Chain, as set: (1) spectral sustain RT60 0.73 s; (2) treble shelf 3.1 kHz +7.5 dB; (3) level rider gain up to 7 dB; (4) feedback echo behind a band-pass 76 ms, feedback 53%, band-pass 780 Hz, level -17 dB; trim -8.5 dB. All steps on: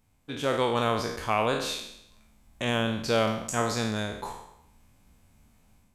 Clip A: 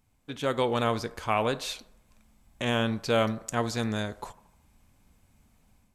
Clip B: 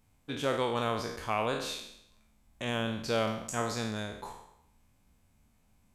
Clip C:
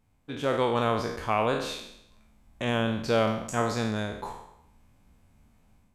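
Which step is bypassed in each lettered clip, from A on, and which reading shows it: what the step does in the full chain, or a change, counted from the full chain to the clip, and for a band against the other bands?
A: 1, 8 kHz band -3.0 dB; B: 3, momentary loudness spread change -2 LU; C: 2, 8 kHz band -6.0 dB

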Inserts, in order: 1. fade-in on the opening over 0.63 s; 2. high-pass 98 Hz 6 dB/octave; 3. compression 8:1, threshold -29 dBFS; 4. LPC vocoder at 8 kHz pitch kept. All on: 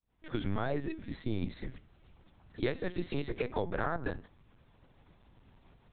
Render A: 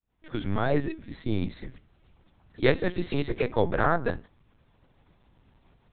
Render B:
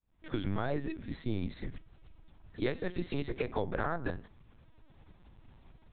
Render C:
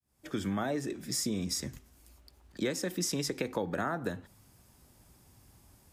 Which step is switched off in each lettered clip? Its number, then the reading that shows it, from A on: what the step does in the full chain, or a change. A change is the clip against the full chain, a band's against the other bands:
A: 3, mean gain reduction 5.5 dB; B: 2, momentary loudness spread change +3 LU; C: 4, crest factor change -3.5 dB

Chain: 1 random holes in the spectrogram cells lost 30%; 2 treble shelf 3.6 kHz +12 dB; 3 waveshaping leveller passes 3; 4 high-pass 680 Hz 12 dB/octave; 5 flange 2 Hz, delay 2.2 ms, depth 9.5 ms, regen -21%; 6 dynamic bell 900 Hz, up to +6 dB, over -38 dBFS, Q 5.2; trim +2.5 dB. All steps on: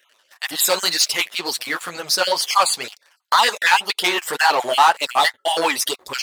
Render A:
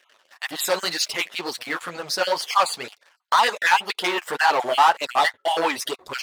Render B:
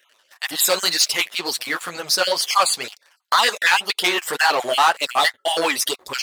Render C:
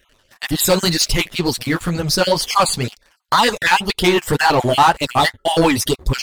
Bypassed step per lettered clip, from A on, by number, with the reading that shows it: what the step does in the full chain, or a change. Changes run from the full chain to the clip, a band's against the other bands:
2, 8 kHz band -6.5 dB; 6, 1 kHz band -2.5 dB; 4, 250 Hz band +14.5 dB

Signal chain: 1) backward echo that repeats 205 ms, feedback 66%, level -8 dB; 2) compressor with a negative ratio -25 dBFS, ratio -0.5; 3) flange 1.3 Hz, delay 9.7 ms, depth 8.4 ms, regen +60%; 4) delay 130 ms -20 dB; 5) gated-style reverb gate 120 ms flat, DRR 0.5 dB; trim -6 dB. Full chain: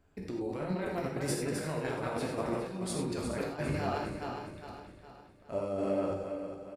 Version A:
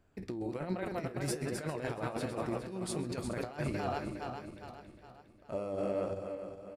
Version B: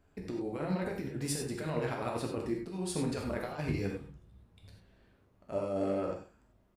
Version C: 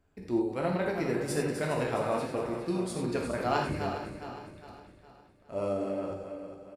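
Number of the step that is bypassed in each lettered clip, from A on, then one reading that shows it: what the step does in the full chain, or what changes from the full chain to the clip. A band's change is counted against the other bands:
5, loudness change -2.5 LU; 1, 1 kHz band -3.0 dB; 2, 8 kHz band -4.0 dB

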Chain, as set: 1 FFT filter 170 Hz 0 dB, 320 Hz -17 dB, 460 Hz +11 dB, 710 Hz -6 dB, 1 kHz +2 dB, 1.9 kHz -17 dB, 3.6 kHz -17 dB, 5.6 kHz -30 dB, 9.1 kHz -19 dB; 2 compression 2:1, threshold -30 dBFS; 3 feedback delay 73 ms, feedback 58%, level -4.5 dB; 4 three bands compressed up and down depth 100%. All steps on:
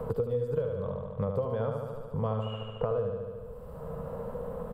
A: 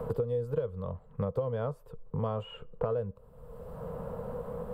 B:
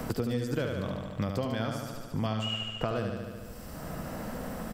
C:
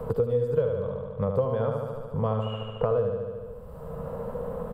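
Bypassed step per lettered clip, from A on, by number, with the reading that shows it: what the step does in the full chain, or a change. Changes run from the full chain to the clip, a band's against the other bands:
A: 3, loudness change -1.5 LU; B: 1, momentary loudness spread change -1 LU; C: 2, loudness change +5.0 LU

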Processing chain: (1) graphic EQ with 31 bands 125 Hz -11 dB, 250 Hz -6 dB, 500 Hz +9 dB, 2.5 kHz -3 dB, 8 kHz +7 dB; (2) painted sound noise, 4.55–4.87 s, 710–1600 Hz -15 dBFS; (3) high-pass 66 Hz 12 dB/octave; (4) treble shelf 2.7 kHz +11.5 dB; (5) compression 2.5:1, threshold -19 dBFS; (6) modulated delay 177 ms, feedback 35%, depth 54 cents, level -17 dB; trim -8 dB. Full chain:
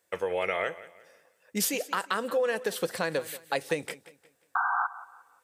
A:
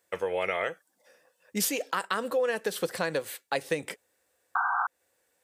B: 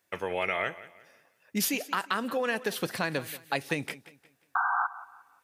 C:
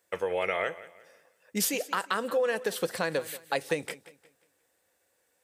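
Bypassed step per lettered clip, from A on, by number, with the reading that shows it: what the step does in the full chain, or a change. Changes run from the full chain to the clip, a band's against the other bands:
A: 6, momentary loudness spread change -2 LU; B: 1, 500 Hz band -5.0 dB; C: 2, 1 kHz band -3.5 dB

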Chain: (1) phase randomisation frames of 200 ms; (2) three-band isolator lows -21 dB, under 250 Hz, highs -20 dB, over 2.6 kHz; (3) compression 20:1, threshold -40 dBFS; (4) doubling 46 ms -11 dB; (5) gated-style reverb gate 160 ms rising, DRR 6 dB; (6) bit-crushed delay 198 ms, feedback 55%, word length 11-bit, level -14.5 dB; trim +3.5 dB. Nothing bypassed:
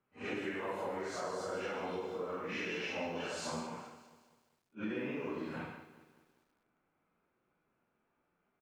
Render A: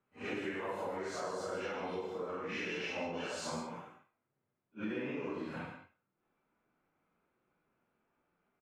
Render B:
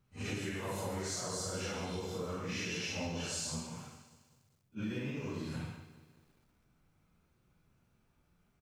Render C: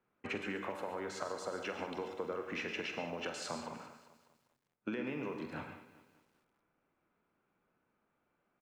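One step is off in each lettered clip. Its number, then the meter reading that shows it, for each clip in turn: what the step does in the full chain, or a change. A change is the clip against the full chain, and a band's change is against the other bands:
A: 6, momentary loudness spread change -2 LU; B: 2, 8 kHz band +11.0 dB; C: 1, crest factor change +6.0 dB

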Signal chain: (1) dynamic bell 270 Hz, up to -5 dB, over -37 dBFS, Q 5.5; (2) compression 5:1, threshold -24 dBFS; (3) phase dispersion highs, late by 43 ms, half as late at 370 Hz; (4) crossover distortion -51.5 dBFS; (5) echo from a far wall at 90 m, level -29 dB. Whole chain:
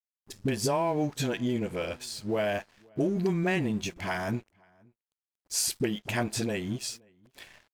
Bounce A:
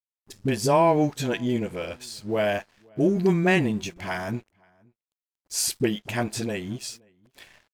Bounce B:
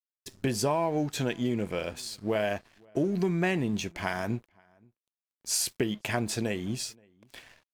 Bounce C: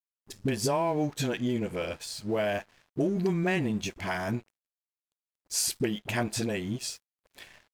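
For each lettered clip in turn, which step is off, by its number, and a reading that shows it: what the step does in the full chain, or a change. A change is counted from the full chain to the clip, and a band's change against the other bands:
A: 2, mean gain reduction 2.5 dB; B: 3, crest factor change +2.5 dB; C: 5, echo-to-direct -30.5 dB to none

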